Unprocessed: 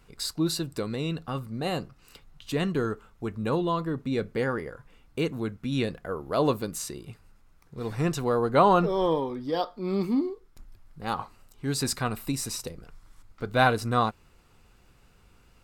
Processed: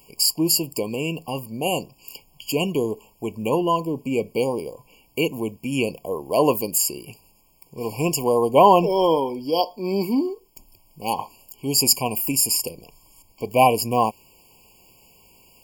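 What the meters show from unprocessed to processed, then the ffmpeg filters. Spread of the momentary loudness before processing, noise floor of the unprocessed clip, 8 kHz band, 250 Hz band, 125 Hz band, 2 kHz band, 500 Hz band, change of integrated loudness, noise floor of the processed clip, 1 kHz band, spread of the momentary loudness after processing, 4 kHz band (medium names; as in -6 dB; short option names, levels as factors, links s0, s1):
14 LU, -59 dBFS, +13.5 dB, +3.5 dB, 0.0 dB, +1.0 dB, +6.5 dB, +6.5 dB, -59 dBFS, +6.5 dB, 15 LU, +9.5 dB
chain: -af "aemphasis=mode=production:type=bsi,afftfilt=real='re*eq(mod(floor(b*sr/1024/1100),2),0)':imag='im*eq(mod(floor(b*sr/1024/1100),2),0)':win_size=1024:overlap=0.75,volume=2.51"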